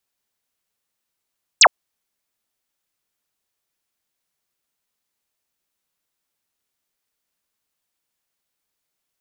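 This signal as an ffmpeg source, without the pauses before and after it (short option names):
-f lavfi -i "aevalsrc='0.501*clip(t/0.002,0,1)*clip((0.06-t)/0.002,0,1)*sin(2*PI*8700*0.06/log(520/8700)*(exp(log(520/8700)*t/0.06)-1))':d=0.06:s=44100"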